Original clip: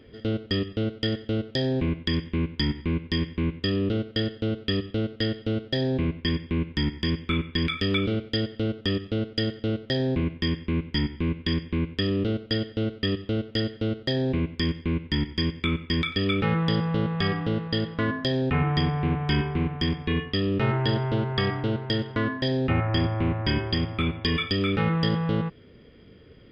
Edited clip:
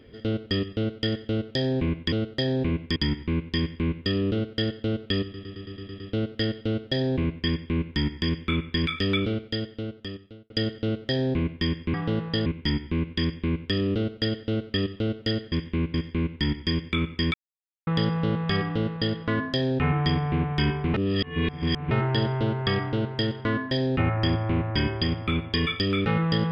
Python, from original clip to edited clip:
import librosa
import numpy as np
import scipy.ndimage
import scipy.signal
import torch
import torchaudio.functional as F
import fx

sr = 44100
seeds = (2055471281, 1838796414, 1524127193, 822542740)

y = fx.edit(x, sr, fx.swap(start_s=2.12, length_s=0.42, other_s=13.81, other_length_s=0.84),
    fx.stutter(start_s=4.81, slice_s=0.11, count=8),
    fx.fade_out_span(start_s=7.98, length_s=1.33),
    fx.silence(start_s=16.05, length_s=0.53),
    fx.duplicate(start_s=17.33, length_s=0.52, to_s=10.75),
    fx.reverse_span(start_s=19.65, length_s=0.97), tone=tone)